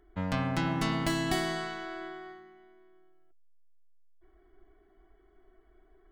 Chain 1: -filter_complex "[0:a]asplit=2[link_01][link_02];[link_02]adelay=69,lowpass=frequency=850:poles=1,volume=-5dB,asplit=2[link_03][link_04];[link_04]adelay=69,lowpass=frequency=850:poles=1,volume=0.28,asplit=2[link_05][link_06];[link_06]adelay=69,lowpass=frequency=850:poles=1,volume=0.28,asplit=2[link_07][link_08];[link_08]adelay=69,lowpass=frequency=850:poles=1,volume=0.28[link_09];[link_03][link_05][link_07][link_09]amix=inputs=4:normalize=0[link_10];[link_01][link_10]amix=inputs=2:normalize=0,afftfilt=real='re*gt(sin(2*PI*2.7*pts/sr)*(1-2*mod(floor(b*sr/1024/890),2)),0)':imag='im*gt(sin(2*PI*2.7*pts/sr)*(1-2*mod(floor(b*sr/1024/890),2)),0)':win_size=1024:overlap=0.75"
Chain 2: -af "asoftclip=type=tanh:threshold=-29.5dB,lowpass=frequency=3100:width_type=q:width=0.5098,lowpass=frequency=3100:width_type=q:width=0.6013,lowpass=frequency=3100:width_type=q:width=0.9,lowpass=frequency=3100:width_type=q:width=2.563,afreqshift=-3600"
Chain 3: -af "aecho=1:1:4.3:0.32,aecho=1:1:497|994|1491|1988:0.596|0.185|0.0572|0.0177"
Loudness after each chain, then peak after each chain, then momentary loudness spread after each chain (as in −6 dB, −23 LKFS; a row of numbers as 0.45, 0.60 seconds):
−34.0, −33.0, −31.0 LKFS; −18.0, −22.0, −14.5 dBFS; 15, 14, 17 LU